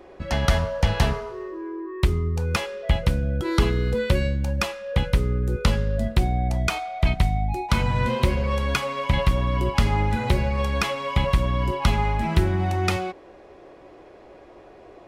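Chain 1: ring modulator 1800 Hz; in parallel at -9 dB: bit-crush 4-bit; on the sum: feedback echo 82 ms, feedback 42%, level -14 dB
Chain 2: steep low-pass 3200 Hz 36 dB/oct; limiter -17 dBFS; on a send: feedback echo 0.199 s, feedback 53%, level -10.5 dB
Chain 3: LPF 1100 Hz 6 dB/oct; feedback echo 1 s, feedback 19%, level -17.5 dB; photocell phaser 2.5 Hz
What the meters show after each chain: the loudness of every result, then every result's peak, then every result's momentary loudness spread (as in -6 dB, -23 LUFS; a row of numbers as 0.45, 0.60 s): -20.0, -27.0, -29.5 LUFS; -4.5, -14.5, -10.0 dBFS; 6, 11, 9 LU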